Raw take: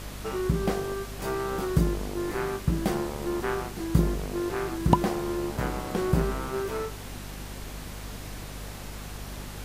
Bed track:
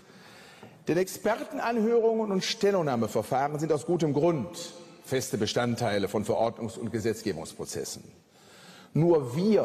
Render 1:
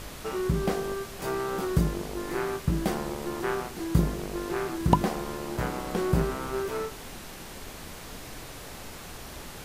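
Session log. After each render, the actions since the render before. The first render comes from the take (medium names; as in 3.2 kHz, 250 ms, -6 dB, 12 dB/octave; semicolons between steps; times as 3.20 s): de-hum 50 Hz, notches 7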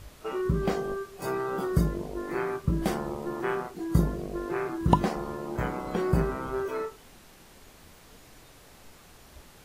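noise print and reduce 11 dB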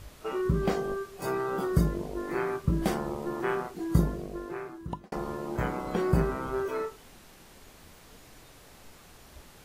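3.92–5.12 s: fade out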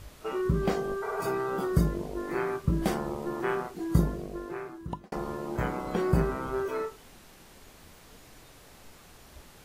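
1.05–1.27 s: spectral replace 400–2400 Hz after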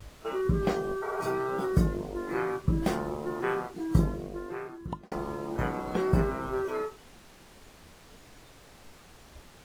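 median filter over 3 samples; vibrato 0.69 Hz 33 cents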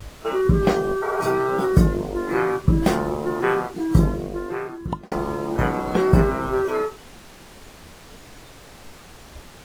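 trim +9 dB; peak limiter -3 dBFS, peak gain reduction 2.5 dB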